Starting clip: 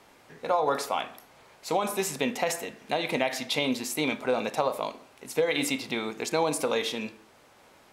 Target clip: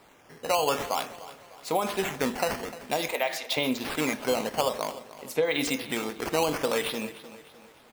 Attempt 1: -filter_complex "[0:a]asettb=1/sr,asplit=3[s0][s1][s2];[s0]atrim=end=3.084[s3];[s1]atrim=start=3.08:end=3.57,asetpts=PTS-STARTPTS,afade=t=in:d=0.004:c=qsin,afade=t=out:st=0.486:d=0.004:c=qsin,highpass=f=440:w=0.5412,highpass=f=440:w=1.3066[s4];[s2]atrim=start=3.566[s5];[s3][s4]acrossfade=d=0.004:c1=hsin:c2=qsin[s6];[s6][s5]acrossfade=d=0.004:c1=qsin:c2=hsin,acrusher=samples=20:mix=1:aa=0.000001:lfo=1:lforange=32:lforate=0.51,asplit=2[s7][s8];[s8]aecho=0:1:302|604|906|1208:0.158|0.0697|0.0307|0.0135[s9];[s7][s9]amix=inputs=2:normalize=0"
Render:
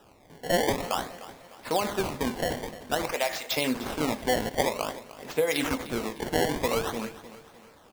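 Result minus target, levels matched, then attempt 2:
decimation with a swept rate: distortion +9 dB
-filter_complex "[0:a]asettb=1/sr,asplit=3[s0][s1][s2];[s0]atrim=end=3.084[s3];[s1]atrim=start=3.08:end=3.57,asetpts=PTS-STARTPTS,afade=t=in:d=0.004:c=qsin,afade=t=out:st=0.486:d=0.004:c=qsin,highpass=f=440:w=0.5412,highpass=f=440:w=1.3066[s4];[s2]atrim=start=3.566[s5];[s3][s4]acrossfade=d=0.004:c1=hsin:c2=qsin[s6];[s6][s5]acrossfade=d=0.004:c1=qsin:c2=hsin,acrusher=samples=7:mix=1:aa=0.000001:lfo=1:lforange=11.2:lforate=0.51,asplit=2[s7][s8];[s8]aecho=0:1:302|604|906|1208:0.158|0.0697|0.0307|0.0135[s9];[s7][s9]amix=inputs=2:normalize=0"

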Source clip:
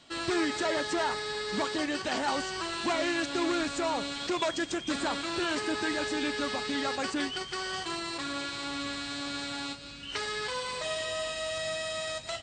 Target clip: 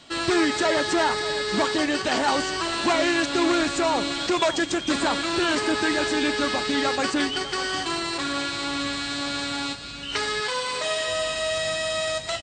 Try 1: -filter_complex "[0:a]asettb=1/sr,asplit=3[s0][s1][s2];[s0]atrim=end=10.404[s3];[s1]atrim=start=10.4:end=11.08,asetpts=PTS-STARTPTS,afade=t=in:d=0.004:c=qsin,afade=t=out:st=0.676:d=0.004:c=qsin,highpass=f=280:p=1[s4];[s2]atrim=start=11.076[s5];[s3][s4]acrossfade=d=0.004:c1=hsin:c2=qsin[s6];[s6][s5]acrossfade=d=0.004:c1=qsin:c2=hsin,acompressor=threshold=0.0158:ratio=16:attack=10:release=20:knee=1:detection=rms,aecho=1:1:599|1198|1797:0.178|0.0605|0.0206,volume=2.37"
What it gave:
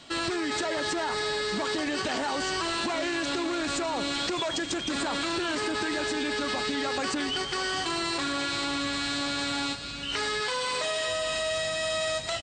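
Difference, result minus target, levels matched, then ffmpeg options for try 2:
compression: peak gain reduction +11 dB
-filter_complex "[0:a]asettb=1/sr,asplit=3[s0][s1][s2];[s0]atrim=end=10.404[s3];[s1]atrim=start=10.4:end=11.08,asetpts=PTS-STARTPTS,afade=t=in:d=0.004:c=qsin,afade=t=out:st=0.676:d=0.004:c=qsin,highpass=f=280:p=1[s4];[s2]atrim=start=11.076[s5];[s3][s4]acrossfade=d=0.004:c1=hsin:c2=qsin[s6];[s6][s5]acrossfade=d=0.004:c1=qsin:c2=hsin,aecho=1:1:599|1198|1797:0.178|0.0605|0.0206,volume=2.37"

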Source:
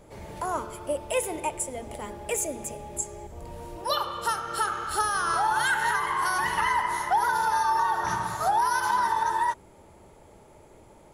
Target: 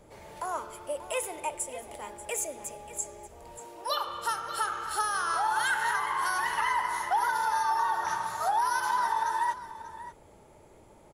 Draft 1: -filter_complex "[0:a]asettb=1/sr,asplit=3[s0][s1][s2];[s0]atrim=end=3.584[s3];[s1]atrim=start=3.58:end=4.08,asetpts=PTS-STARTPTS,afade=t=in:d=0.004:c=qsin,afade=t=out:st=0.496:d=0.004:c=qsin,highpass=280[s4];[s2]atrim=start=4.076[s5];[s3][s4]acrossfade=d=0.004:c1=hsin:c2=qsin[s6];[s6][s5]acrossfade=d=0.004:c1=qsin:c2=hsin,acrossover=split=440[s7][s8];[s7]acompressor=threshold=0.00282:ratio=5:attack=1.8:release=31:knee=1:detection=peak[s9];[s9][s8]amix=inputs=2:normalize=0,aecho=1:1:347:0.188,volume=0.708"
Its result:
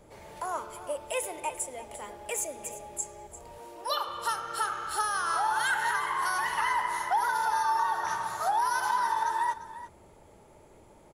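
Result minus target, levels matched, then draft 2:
echo 240 ms early
-filter_complex "[0:a]asettb=1/sr,asplit=3[s0][s1][s2];[s0]atrim=end=3.584[s3];[s1]atrim=start=3.58:end=4.08,asetpts=PTS-STARTPTS,afade=t=in:d=0.004:c=qsin,afade=t=out:st=0.496:d=0.004:c=qsin,highpass=280[s4];[s2]atrim=start=4.076[s5];[s3][s4]acrossfade=d=0.004:c1=hsin:c2=qsin[s6];[s6][s5]acrossfade=d=0.004:c1=qsin:c2=hsin,acrossover=split=440[s7][s8];[s7]acompressor=threshold=0.00282:ratio=5:attack=1.8:release=31:knee=1:detection=peak[s9];[s9][s8]amix=inputs=2:normalize=0,aecho=1:1:587:0.188,volume=0.708"

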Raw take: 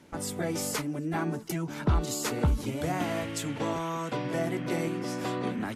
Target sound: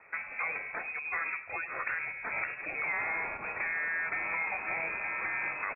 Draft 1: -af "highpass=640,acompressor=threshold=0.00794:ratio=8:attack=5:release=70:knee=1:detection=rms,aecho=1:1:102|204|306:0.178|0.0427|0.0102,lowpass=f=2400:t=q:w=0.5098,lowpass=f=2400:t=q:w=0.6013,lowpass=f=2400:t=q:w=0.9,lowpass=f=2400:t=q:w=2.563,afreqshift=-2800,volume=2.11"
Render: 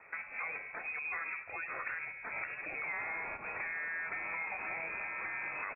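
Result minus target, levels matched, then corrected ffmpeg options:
compression: peak gain reduction +5.5 dB
-af "highpass=640,acompressor=threshold=0.0168:ratio=8:attack=5:release=70:knee=1:detection=rms,aecho=1:1:102|204|306:0.178|0.0427|0.0102,lowpass=f=2400:t=q:w=0.5098,lowpass=f=2400:t=q:w=0.6013,lowpass=f=2400:t=q:w=0.9,lowpass=f=2400:t=q:w=2.563,afreqshift=-2800,volume=2.11"

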